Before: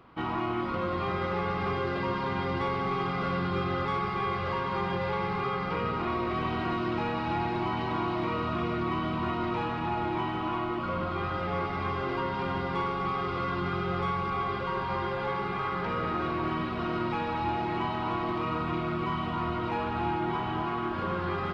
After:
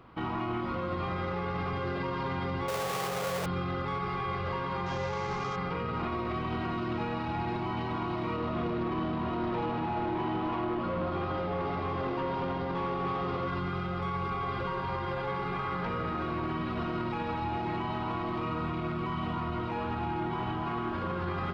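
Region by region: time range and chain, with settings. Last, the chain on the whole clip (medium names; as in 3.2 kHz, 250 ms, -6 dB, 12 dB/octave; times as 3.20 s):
2.68–3.46 s: square wave that keeps the level + high-pass 55 Hz + resonant low shelf 380 Hz -7.5 dB, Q 3
4.86–5.56 s: CVSD coder 32 kbps + hum notches 60/120/180/240/300/360 Hz
8.37–13.48 s: peaking EQ 1.8 kHz -14.5 dB 2.1 oct + overdrive pedal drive 19 dB, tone 3.1 kHz, clips at -22.5 dBFS + low-pass 4.2 kHz
whole clip: bass shelf 300 Hz +5 dB; hum notches 50/100/150/200/250/300/350/400 Hz; peak limiter -25 dBFS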